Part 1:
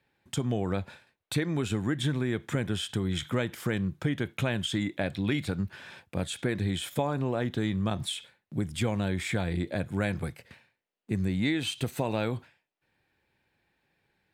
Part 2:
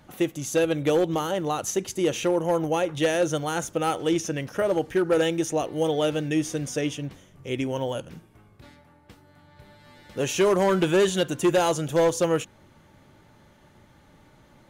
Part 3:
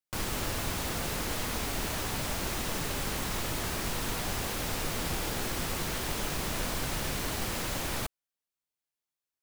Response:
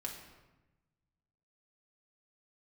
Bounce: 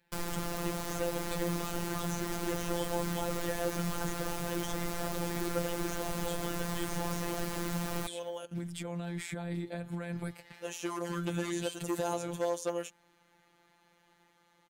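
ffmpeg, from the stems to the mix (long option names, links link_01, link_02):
-filter_complex "[0:a]alimiter=level_in=1dB:limit=-24dB:level=0:latency=1,volume=-1dB,volume=2dB[link_01];[1:a]highpass=frequency=680:poles=1,adelay=450,volume=-4dB[link_02];[2:a]volume=2.5dB[link_03];[link_01][link_02][link_03]amix=inputs=3:normalize=0,acrossover=split=740|1700|4700[link_04][link_05][link_06][link_07];[link_04]acompressor=threshold=-29dB:ratio=4[link_08];[link_05]acompressor=threshold=-38dB:ratio=4[link_09];[link_06]acompressor=threshold=-49dB:ratio=4[link_10];[link_07]acompressor=threshold=-40dB:ratio=4[link_11];[link_08][link_09][link_10][link_11]amix=inputs=4:normalize=0,afftfilt=real='hypot(re,im)*cos(PI*b)':imag='0':win_size=1024:overlap=0.75"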